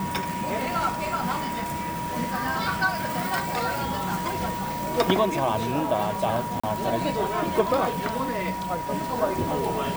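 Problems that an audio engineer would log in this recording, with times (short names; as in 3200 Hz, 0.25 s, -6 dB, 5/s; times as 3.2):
tone 960 Hz -30 dBFS
6.6–6.63 gap 35 ms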